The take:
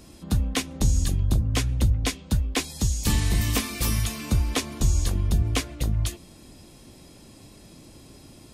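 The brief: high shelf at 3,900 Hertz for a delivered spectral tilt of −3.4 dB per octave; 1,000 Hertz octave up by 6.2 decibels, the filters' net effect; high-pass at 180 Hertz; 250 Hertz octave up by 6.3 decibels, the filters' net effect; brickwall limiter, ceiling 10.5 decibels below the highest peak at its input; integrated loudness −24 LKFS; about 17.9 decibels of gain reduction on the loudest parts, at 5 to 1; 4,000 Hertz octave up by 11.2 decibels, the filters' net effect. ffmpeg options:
ffmpeg -i in.wav -af "highpass=180,equalizer=frequency=250:width_type=o:gain=9,equalizer=frequency=1000:width_type=o:gain=6,highshelf=frequency=3900:gain=7.5,equalizer=frequency=4000:width_type=o:gain=9,acompressor=threshold=-35dB:ratio=5,volume=15dB,alimiter=limit=-13dB:level=0:latency=1" out.wav

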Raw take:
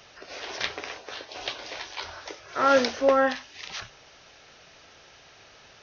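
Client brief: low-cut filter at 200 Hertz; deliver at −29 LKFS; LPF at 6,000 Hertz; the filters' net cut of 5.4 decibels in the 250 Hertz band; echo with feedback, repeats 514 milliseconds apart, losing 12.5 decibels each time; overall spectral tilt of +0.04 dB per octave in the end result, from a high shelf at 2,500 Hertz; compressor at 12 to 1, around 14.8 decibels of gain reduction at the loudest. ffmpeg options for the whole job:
ffmpeg -i in.wav -af "highpass=200,lowpass=6000,equalizer=frequency=250:width_type=o:gain=-4.5,highshelf=frequency=2500:gain=5,acompressor=threshold=-30dB:ratio=12,aecho=1:1:514|1028|1542:0.237|0.0569|0.0137,volume=7dB" out.wav

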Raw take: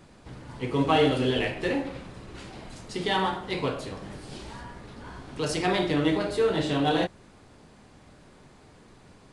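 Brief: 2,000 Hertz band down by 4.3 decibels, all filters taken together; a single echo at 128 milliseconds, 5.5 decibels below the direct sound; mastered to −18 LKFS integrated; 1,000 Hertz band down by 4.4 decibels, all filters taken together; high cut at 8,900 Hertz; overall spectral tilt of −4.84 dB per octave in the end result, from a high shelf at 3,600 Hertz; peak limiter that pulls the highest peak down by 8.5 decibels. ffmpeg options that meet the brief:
ffmpeg -i in.wav -af "lowpass=8900,equalizer=frequency=1000:width_type=o:gain=-5.5,equalizer=frequency=2000:width_type=o:gain=-6.5,highshelf=frequency=3600:gain=8,alimiter=limit=-20dB:level=0:latency=1,aecho=1:1:128:0.531,volume=12.5dB" out.wav

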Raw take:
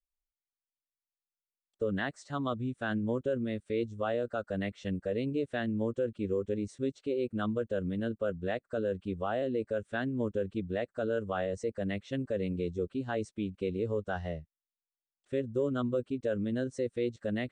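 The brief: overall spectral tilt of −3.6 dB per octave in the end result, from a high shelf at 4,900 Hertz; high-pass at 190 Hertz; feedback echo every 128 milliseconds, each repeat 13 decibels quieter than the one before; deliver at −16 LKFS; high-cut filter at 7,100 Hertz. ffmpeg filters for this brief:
ffmpeg -i in.wav -af "highpass=190,lowpass=7100,highshelf=frequency=4900:gain=-6,aecho=1:1:128|256|384:0.224|0.0493|0.0108,volume=18.5dB" out.wav

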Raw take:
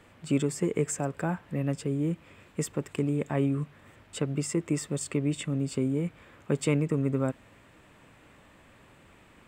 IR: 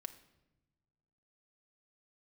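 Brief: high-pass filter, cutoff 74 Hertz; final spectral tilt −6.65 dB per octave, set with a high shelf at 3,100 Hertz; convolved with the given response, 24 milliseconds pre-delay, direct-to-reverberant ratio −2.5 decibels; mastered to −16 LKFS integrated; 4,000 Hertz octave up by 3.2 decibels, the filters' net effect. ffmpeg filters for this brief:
-filter_complex "[0:a]highpass=74,highshelf=frequency=3100:gain=-6,equalizer=frequency=4000:width_type=o:gain=9,asplit=2[link_01][link_02];[1:a]atrim=start_sample=2205,adelay=24[link_03];[link_02][link_03]afir=irnorm=-1:irlink=0,volume=6.5dB[link_04];[link_01][link_04]amix=inputs=2:normalize=0,volume=10dB"

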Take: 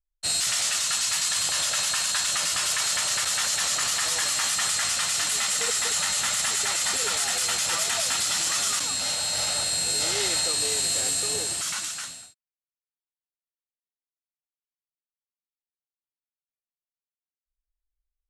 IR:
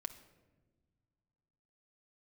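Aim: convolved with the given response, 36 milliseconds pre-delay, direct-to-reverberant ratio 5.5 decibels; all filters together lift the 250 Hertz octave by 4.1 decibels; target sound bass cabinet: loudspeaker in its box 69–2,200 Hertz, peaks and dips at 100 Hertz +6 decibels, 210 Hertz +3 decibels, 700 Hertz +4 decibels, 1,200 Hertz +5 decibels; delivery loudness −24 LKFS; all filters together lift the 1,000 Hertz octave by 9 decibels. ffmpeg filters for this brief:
-filter_complex "[0:a]equalizer=frequency=250:width_type=o:gain=3.5,equalizer=frequency=1000:width_type=o:gain=7.5,asplit=2[link_01][link_02];[1:a]atrim=start_sample=2205,adelay=36[link_03];[link_02][link_03]afir=irnorm=-1:irlink=0,volume=-3dB[link_04];[link_01][link_04]amix=inputs=2:normalize=0,highpass=frequency=69:width=0.5412,highpass=frequency=69:width=1.3066,equalizer=frequency=100:width_type=q:width=4:gain=6,equalizer=frequency=210:width_type=q:width=4:gain=3,equalizer=frequency=700:width_type=q:width=4:gain=4,equalizer=frequency=1200:width_type=q:width=4:gain=5,lowpass=frequency=2200:width=0.5412,lowpass=frequency=2200:width=1.3066,volume=3dB"

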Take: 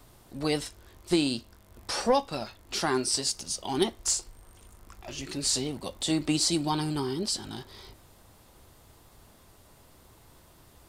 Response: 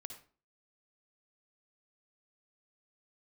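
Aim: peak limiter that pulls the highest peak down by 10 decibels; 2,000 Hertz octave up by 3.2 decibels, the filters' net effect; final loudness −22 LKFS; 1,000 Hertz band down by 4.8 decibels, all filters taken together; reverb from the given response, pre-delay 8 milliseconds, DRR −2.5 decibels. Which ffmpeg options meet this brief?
-filter_complex "[0:a]equalizer=frequency=1000:width_type=o:gain=-7.5,equalizer=frequency=2000:width_type=o:gain=6.5,alimiter=limit=-22dB:level=0:latency=1,asplit=2[link_01][link_02];[1:a]atrim=start_sample=2205,adelay=8[link_03];[link_02][link_03]afir=irnorm=-1:irlink=0,volume=7dB[link_04];[link_01][link_04]amix=inputs=2:normalize=0,volume=6.5dB"

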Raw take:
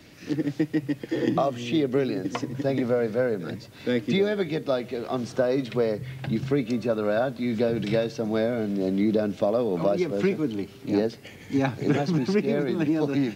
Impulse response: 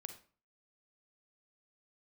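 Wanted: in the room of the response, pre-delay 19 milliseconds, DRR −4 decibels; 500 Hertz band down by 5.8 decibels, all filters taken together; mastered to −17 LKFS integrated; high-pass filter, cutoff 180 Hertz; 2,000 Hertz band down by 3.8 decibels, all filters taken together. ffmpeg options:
-filter_complex "[0:a]highpass=180,equalizer=frequency=500:width_type=o:gain=-7,equalizer=frequency=2000:width_type=o:gain=-4.5,asplit=2[link_01][link_02];[1:a]atrim=start_sample=2205,adelay=19[link_03];[link_02][link_03]afir=irnorm=-1:irlink=0,volume=8.5dB[link_04];[link_01][link_04]amix=inputs=2:normalize=0,volume=7.5dB"

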